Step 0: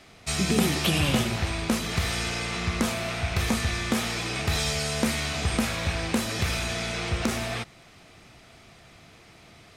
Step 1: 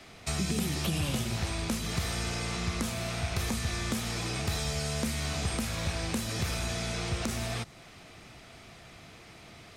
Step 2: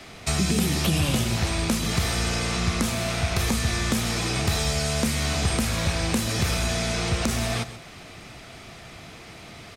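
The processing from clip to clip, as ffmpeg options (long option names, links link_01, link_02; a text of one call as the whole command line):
ffmpeg -i in.wav -filter_complex "[0:a]acrossover=split=170|1600|4000[link_01][link_02][link_03][link_04];[link_01]acompressor=threshold=-32dB:ratio=4[link_05];[link_02]acompressor=threshold=-38dB:ratio=4[link_06];[link_03]acompressor=threshold=-47dB:ratio=4[link_07];[link_04]acompressor=threshold=-39dB:ratio=4[link_08];[link_05][link_06][link_07][link_08]amix=inputs=4:normalize=0,volume=1dB" out.wav
ffmpeg -i in.wav -af "aecho=1:1:133:0.211,volume=7.5dB" out.wav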